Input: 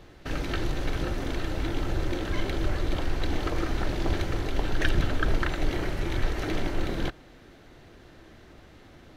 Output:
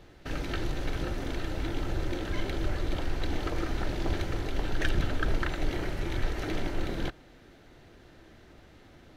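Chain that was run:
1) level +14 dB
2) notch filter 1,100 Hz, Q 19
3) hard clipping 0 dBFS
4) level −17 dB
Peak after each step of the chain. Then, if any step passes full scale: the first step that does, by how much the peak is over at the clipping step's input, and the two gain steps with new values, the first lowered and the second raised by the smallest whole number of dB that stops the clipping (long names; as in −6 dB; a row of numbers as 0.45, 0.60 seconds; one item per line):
+4.0, +4.0, 0.0, −17.0 dBFS
step 1, 4.0 dB
step 1 +10 dB, step 4 −13 dB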